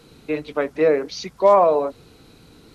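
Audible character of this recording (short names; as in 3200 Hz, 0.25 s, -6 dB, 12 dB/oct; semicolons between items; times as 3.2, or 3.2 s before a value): noise floor -51 dBFS; spectral tilt -3.5 dB/oct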